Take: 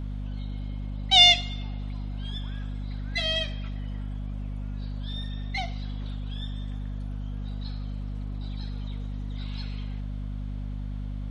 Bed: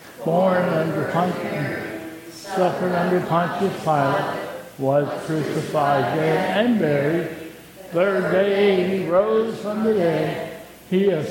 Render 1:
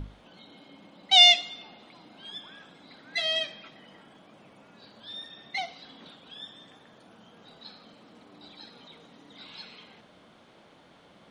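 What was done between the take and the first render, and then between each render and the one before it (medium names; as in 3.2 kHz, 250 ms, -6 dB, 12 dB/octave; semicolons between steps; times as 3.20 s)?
hum notches 50/100/150/200/250 Hz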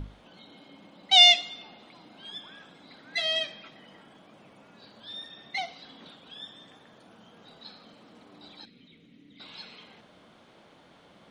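8.65–9.40 s: FFT filter 290 Hz 0 dB, 870 Hz -23 dB, 1.6 kHz -14 dB, 2.2 kHz -2 dB, 5.4 kHz -13 dB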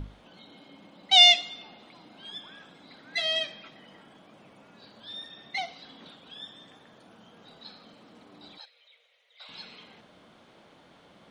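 8.58–9.49 s: steep high-pass 500 Hz 72 dB/octave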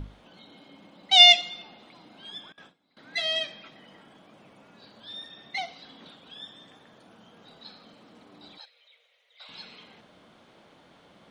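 1.19–1.62 s: comb 5.7 ms, depth 53%; 2.52–2.97 s: gate with hold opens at -39 dBFS, closes at -44 dBFS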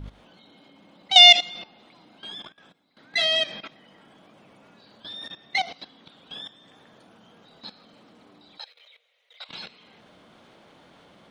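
level held to a coarse grid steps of 16 dB; loudness maximiser +10 dB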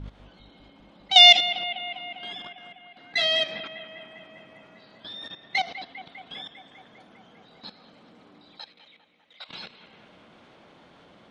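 distance through air 53 m; bucket-brigade echo 200 ms, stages 4096, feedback 73%, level -13 dB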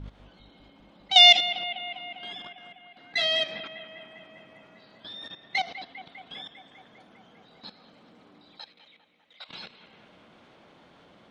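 trim -2 dB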